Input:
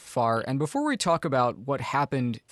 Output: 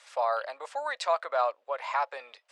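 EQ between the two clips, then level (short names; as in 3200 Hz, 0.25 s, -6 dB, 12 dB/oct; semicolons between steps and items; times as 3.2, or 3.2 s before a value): elliptic high-pass 570 Hz, stop band 70 dB; air absorption 100 m; -1.5 dB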